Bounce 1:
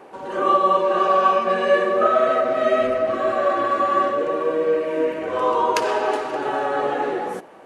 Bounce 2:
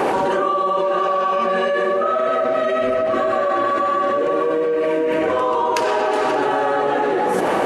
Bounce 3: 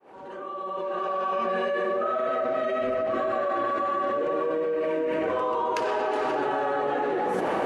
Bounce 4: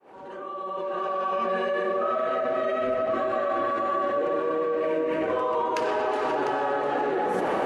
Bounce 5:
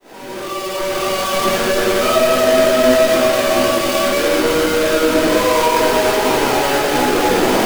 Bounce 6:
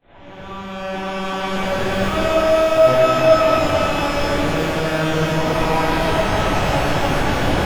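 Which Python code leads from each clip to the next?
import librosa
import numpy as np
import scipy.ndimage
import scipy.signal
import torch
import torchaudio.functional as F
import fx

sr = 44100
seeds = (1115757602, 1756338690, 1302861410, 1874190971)

y1 = fx.env_flatten(x, sr, amount_pct=100)
y1 = y1 * librosa.db_to_amplitude(-6.0)
y2 = fx.fade_in_head(y1, sr, length_s=1.36)
y2 = fx.high_shelf(y2, sr, hz=5600.0, db=-9.5)
y2 = y2 * librosa.db_to_amplitude(-7.5)
y3 = y2 + 10.0 ** (-9.5 / 20.0) * np.pad(y2, (int(700 * sr / 1000.0), 0))[:len(y2)]
y4 = fx.halfwave_hold(y3, sr)
y4 = fx.room_shoebox(y4, sr, seeds[0], volume_m3=280.0, walls='furnished', distance_m=2.9)
y4 = y4 * librosa.db_to_amplitude(2.0)
y5 = fx.lpc_vocoder(y4, sr, seeds[1], excitation='pitch_kept', order=8)
y5 = fx.rev_shimmer(y5, sr, seeds[2], rt60_s=2.9, semitones=12, shimmer_db=-8, drr_db=-7.5)
y5 = y5 * librosa.db_to_amplitude(-11.0)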